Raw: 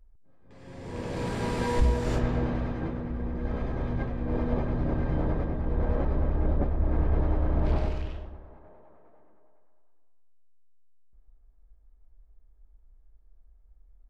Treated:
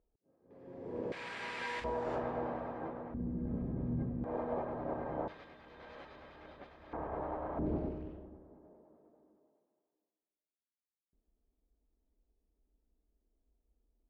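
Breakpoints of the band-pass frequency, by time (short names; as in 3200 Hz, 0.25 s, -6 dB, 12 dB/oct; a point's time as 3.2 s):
band-pass, Q 1.4
420 Hz
from 1.12 s 2200 Hz
from 1.84 s 780 Hz
from 3.14 s 190 Hz
from 4.24 s 760 Hz
from 5.28 s 3700 Hz
from 6.93 s 860 Hz
from 7.59 s 290 Hz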